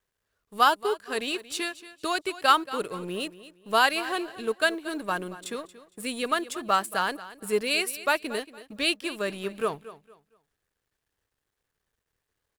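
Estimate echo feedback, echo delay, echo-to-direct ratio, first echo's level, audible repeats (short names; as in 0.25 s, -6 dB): 28%, 0.23 s, -15.5 dB, -16.0 dB, 2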